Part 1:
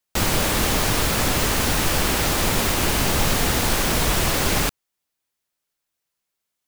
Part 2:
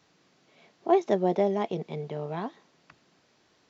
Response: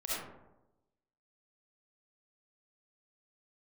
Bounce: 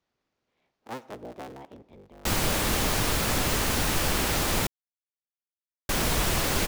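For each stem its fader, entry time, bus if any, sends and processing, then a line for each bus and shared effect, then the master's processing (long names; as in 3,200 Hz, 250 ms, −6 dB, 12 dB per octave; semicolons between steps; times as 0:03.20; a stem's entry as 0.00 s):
−5.0 dB, 2.10 s, muted 0:04.67–0:05.89, no send, no processing
−16.5 dB, 0.00 s, send −21 dB, sub-harmonics by changed cycles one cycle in 3, inverted; high-shelf EQ 4,600 Hz −6 dB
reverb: on, RT60 0.95 s, pre-delay 25 ms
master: no processing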